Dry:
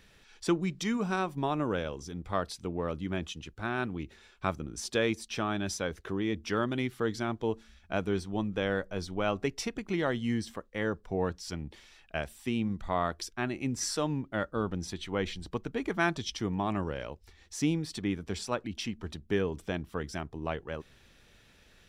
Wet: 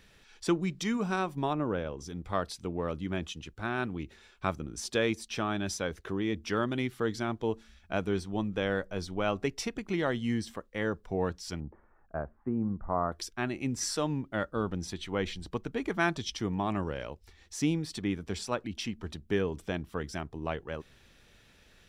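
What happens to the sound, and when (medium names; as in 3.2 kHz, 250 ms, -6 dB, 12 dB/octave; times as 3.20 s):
1.53–2.00 s: low-pass 1.6 kHz 6 dB/octave
11.60–13.12 s: steep low-pass 1.4 kHz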